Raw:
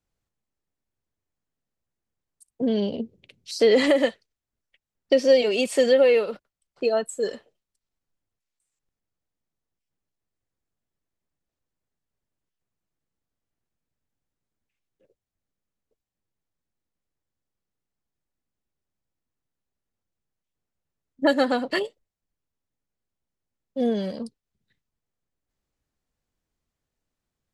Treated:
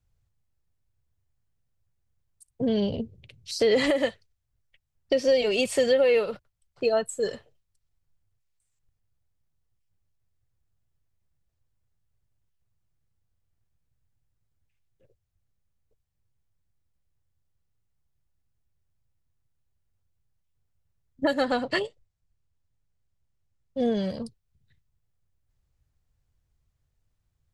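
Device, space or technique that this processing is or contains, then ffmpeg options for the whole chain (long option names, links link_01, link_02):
car stereo with a boomy subwoofer: -filter_complex "[0:a]asettb=1/sr,asplit=3[link_01][link_02][link_03];[link_01]atrim=end=21.424[link_04];[link_02]atrim=start=21.42:end=24.1,asetpts=PTS-STARTPTS,afade=type=in:duration=0.004:curve=qsin,afade=type=out:start_time=2.676:duration=0.004:curve=qsin,lowpass=frequency=9200:width=0.5412,lowpass=frequency=9200:width=1.3066[link_05];[link_03]atrim=start=24.096[link_06];[link_04][link_05]acrossfade=duration=0.004:curve1=hsin:curve2=qsin[link_07];[link_07][link_06]acrossfade=duration=0.004:curve1=qsin:curve2=hsin,lowshelf=frequency=160:width_type=q:width=1.5:gain=12,alimiter=limit=-13dB:level=0:latency=1:release=198"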